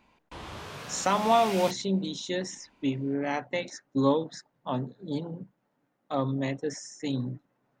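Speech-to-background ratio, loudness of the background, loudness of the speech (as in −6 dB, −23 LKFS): 10.0 dB, −39.5 LKFS, −29.5 LKFS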